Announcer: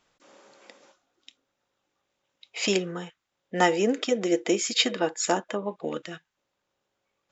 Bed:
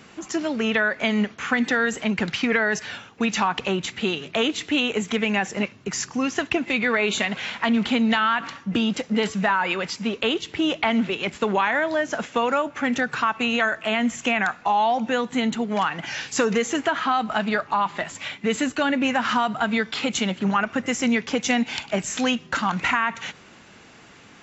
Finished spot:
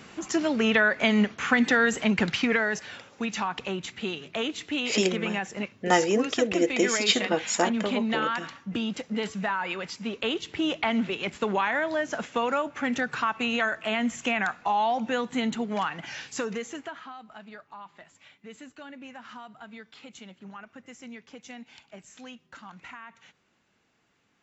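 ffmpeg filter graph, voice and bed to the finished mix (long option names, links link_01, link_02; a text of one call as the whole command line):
ffmpeg -i stem1.wav -i stem2.wav -filter_complex "[0:a]adelay=2300,volume=0dB[link_01];[1:a]volume=3dB,afade=type=out:start_time=2.21:duration=0.65:silence=0.421697,afade=type=in:start_time=10:duration=0.46:silence=0.707946,afade=type=out:start_time=15.61:duration=1.53:silence=0.133352[link_02];[link_01][link_02]amix=inputs=2:normalize=0" out.wav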